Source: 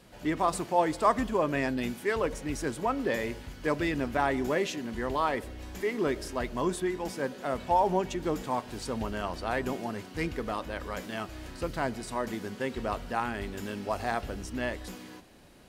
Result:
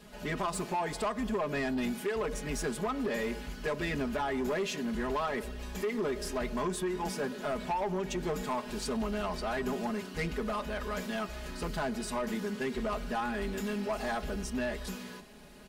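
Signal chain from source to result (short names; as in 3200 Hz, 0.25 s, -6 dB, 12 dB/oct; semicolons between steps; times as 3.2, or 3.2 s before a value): comb 4.8 ms, depth 98%; compressor 6:1, threshold -25 dBFS, peak gain reduction 11.5 dB; soft clip -26.5 dBFS, distortion -13 dB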